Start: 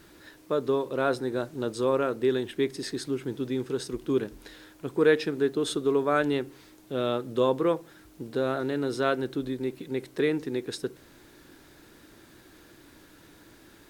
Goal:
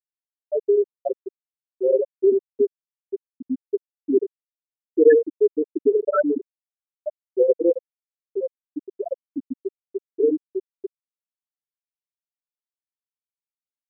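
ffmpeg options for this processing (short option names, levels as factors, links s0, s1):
-af "aecho=1:1:85:0.398,afftfilt=real='re*gte(hypot(re,im),0.501)':imag='im*gte(hypot(re,im),0.501)':win_size=1024:overlap=0.75,volume=2.66"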